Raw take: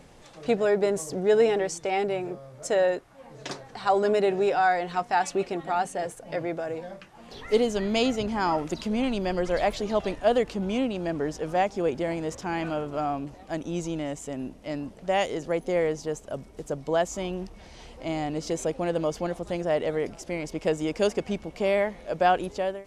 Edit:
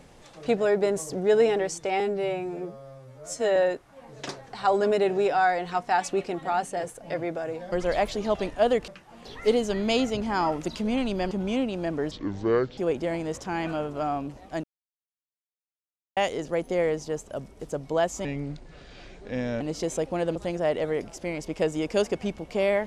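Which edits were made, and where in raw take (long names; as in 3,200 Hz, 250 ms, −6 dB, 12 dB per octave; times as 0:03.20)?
0:02.00–0:02.78: time-stretch 2×
0:09.37–0:10.53: move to 0:06.94
0:11.33–0:11.75: play speed 63%
0:13.61–0:15.14: silence
0:17.22–0:18.28: play speed 78%
0:19.03–0:19.41: remove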